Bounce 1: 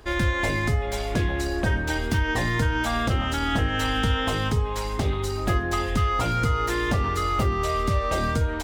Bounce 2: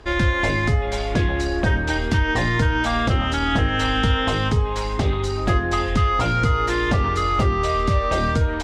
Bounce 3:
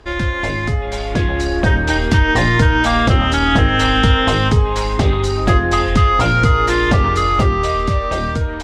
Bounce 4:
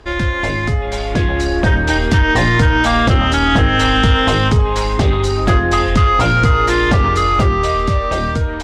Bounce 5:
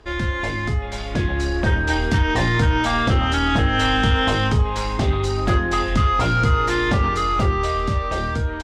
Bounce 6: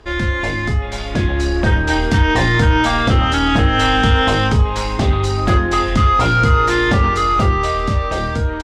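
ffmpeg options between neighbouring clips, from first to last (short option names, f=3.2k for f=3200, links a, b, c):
-af "lowpass=6.1k,volume=4dB"
-af "dynaudnorm=f=250:g=11:m=11.5dB"
-af "asoftclip=type=tanh:threshold=-5.5dB,volume=2dB"
-af "aecho=1:1:28|42:0.335|0.266,volume=-6.5dB"
-filter_complex "[0:a]asplit=2[a][b];[b]adelay=32,volume=-12dB[c];[a][c]amix=inputs=2:normalize=0,volume=4dB"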